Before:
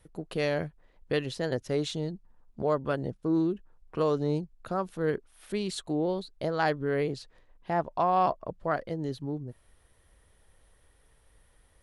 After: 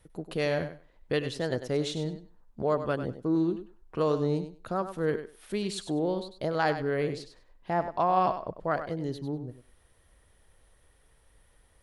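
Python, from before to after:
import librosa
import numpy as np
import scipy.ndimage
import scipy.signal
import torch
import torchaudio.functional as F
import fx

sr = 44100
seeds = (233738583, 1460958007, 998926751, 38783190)

y = fx.echo_thinned(x, sr, ms=98, feedback_pct=17, hz=190.0, wet_db=-10)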